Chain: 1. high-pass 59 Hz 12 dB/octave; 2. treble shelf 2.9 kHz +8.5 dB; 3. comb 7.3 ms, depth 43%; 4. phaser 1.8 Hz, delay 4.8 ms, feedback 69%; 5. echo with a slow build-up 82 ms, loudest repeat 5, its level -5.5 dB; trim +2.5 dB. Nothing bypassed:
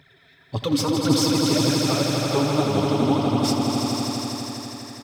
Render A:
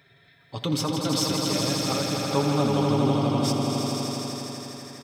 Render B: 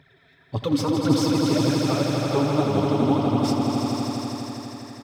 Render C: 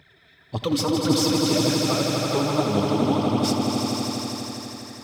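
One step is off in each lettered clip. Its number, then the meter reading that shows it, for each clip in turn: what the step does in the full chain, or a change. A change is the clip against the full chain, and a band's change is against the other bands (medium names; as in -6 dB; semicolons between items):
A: 4, loudness change -3.5 LU; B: 2, 8 kHz band -6.5 dB; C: 3, 125 Hz band -1.5 dB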